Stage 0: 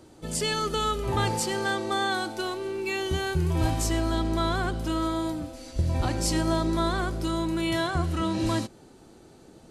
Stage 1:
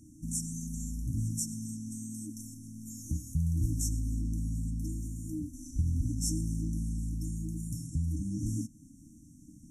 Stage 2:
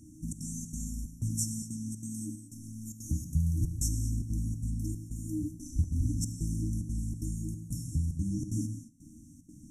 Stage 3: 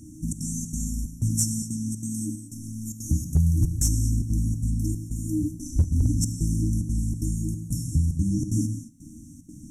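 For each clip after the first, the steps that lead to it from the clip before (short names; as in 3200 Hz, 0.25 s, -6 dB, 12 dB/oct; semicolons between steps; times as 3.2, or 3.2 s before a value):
FFT band-reject 320–5400 Hz; in parallel at 0 dB: compressor, threshold -39 dBFS, peak gain reduction 17.5 dB; on the sum: gain -5 dB
step gate "xxxx.xxx.xxxx..x" 185 bpm -60 dB; non-linear reverb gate 0.25 s flat, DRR 7.5 dB; gain +1.5 dB
overloaded stage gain 20.5 dB; gain +8 dB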